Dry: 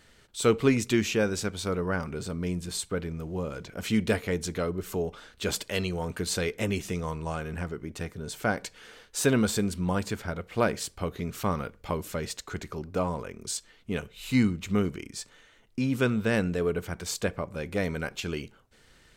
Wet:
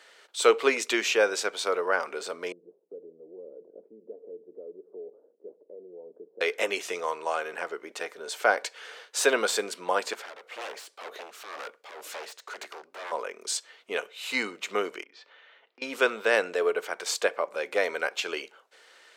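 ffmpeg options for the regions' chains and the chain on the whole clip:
-filter_complex "[0:a]asettb=1/sr,asplit=3[s0][s1][s2];[s0]atrim=end=2.524[s3];[s1]atrim=start=2.52:end=6.41,asetpts=PTS-STARTPTS,afade=t=in:d=0.004:c=qsin,afade=t=out:st=3.886:d=0.004:c=qsin,acompressor=threshold=0.0126:ratio=4:attack=3.2:release=140:knee=1:detection=peak,asuperpass=centerf=240:order=8:qfactor=0.65[s4];[s2]atrim=start=6.406[s5];[s3][s4]acrossfade=d=0.004:c1=hsin:c2=qsin[s6];[s6][s5]acrossfade=d=0.004:c1=qsin:c2=hsin,asettb=1/sr,asplit=3[s7][s8][s9];[s7]atrim=end=10.134[s10];[s8]atrim=start=10.13:end=13.12,asetpts=PTS-STARTPTS,afade=t=in:d=0.004:c=qsin,afade=t=out:st=2.986:d=0.004:c=qsin,acompressor=threshold=0.0282:ratio=4:attack=3.2:release=140:knee=1:detection=peak,aeval=exprs='0.0158*(abs(mod(val(0)/0.0158+3,4)-2)-1)':c=same,tremolo=f=2:d=0.58[s11];[s9]atrim=start=13.116[s12];[s10][s11]acrossfade=d=0.004:c1=hsin:c2=qsin[s13];[s13][s12]acrossfade=d=0.004:c1=qsin:c2=hsin,asettb=1/sr,asplit=3[s14][s15][s16];[s14]atrim=end=15.034[s17];[s15]atrim=start=15.03:end=15.82,asetpts=PTS-STARTPTS,afade=t=in:d=0.004:c=qsin,afade=t=out:st=0.786:d=0.004:c=qsin,lowpass=f=3900:w=0.5412,lowpass=f=3900:w=1.3066,bandreject=f=50:t=h:w=6,bandreject=f=100:t=h:w=6,bandreject=f=150:t=h:w=6,bandreject=f=200:t=h:w=6,bandreject=f=250:t=h:w=6,bandreject=f=300:t=h:w=6,bandreject=f=350:t=h:w=6,bandreject=f=400:t=h:w=6,bandreject=f=450:t=h:w=6,bandreject=f=500:t=h:w=6,acompressor=threshold=0.00126:ratio=2:attack=3.2:release=140:knee=1:detection=peak[s18];[s16]atrim=start=15.816[s19];[s17][s18]acrossfade=d=0.004:c1=hsin:c2=qsin[s20];[s20][s19]acrossfade=d=0.004:c1=qsin:c2=hsin,highpass=f=460:w=0.5412,highpass=f=460:w=1.3066,highshelf=f=8700:g=-11,volume=2.11"

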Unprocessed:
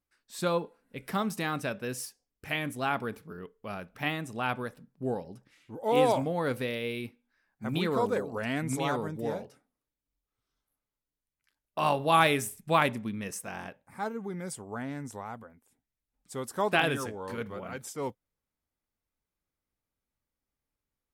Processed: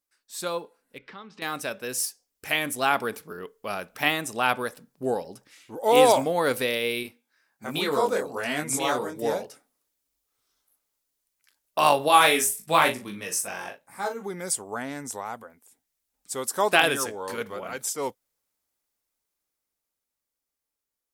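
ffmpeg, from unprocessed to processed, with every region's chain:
-filter_complex "[0:a]asettb=1/sr,asplit=3[s0][s1][s2];[s0]atrim=end=0.984[s3];[s1]atrim=start=0.98:end=1.42,asetpts=PTS-STARTPTS,afade=t=in:d=0.004:c=qsin,afade=t=out:st=0.436:d=0.004:c=qsin,lowpass=f=3800:w=0.5412,lowpass=f=3800:w=1.3066,acompressor=threshold=0.00891:ratio=2.5:attack=3.2:release=140:knee=1:detection=peak,equalizer=f=680:t=o:w=0.25:g=-13.5[s4];[s2]atrim=start=1.416[s5];[s3][s4]acrossfade=d=0.004:c1=hsin:c2=qsin[s6];[s6][s5]acrossfade=d=0.004:c1=qsin:c2=hsin,asettb=1/sr,asplit=3[s7][s8][s9];[s7]atrim=end=7.034[s10];[s8]atrim=start=7.03:end=9.22,asetpts=PTS-STARTPTS,afade=t=in:d=0.004:c=qsin,afade=t=out:st=2.186:d=0.004:c=qsin,flanger=delay=20:depth=3.6:speed=1.3,highpass=48[s11];[s9]atrim=start=9.216[s12];[s10][s11]acrossfade=d=0.004:c1=hsin:c2=qsin[s13];[s13][s12]acrossfade=d=0.004:c1=qsin:c2=hsin,asettb=1/sr,asplit=3[s14][s15][s16];[s14]atrim=end=12.084[s17];[s15]atrim=start=12.08:end=14.23,asetpts=PTS-STARTPTS,afade=t=in:d=0.004:c=qsin,afade=t=out:st=2.146:d=0.004:c=qsin,flanger=delay=15.5:depth=4.9:speed=1,asplit=2[s18][s19];[s19]adelay=39,volume=0.398[s20];[s18][s20]amix=inputs=2:normalize=0,atrim=end_sample=94815[s21];[s16]atrim=start=14.226[s22];[s17][s21]acrossfade=d=0.004:c1=hsin:c2=qsin[s23];[s23][s22]acrossfade=d=0.004:c1=qsin:c2=hsin,dynaudnorm=f=210:g=21:m=2.99,bass=f=250:g=-12,treble=f=4000:g=8,volume=0.891"

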